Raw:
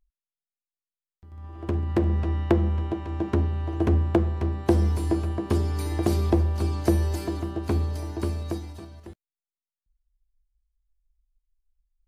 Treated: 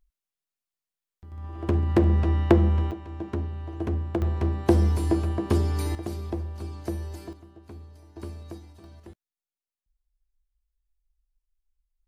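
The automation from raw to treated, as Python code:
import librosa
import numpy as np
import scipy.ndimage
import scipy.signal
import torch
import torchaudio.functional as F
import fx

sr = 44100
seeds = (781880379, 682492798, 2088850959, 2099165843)

y = fx.gain(x, sr, db=fx.steps((0.0, 3.0), (2.91, -6.5), (4.22, 1.0), (5.95, -10.0), (7.33, -19.0), (8.16, -10.0), (8.84, -3.5)))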